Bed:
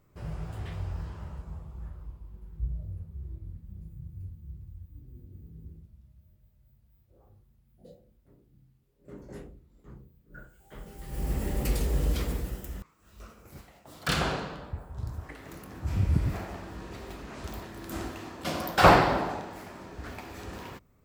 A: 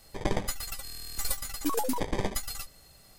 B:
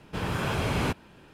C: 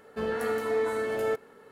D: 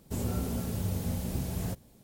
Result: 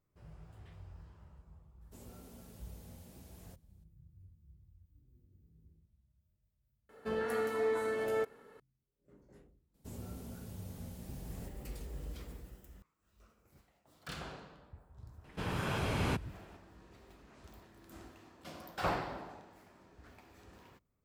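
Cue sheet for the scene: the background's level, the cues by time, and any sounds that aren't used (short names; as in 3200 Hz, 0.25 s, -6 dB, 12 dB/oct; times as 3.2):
bed -17 dB
1.81 add D -17.5 dB + low shelf 200 Hz -8.5 dB
6.89 add C -5 dB
9.74 add D -14 dB
15.24 add B -6.5 dB
not used: A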